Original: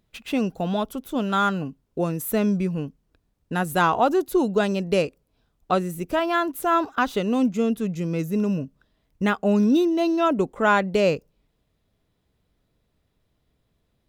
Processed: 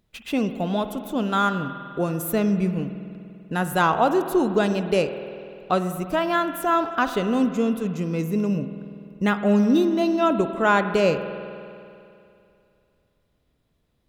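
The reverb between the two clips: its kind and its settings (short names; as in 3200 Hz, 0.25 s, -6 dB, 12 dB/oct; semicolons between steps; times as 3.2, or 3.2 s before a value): spring tank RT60 2.6 s, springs 49 ms, chirp 70 ms, DRR 9 dB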